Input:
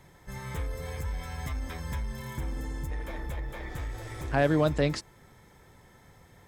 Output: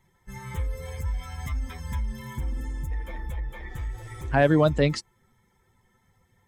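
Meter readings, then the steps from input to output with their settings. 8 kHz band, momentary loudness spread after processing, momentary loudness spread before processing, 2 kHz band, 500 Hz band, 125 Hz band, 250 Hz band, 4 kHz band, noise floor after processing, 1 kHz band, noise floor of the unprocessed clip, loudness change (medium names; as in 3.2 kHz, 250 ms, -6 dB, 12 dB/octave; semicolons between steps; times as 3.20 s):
+1.0 dB, 16 LU, 13 LU, +3.5 dB, +4.5 dB, +4.0 dB, +4.0 dB, +2.5 dB, -68 dBFS, +4.0 dB, -57 dBFS, +4.0 dB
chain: expander on every frequency bin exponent 1.5; treble shelf 8.8 kHz -5.5 dB; trim +6 dB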